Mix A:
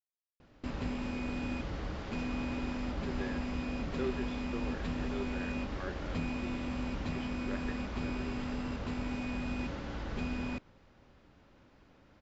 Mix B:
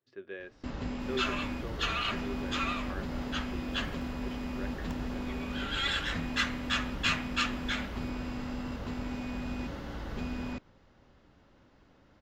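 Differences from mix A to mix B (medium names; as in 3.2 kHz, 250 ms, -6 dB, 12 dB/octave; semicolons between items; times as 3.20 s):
speech: entry -2.90 s; first sound: add band-stop 2.4 kHz, Q 13; second sound: unmuted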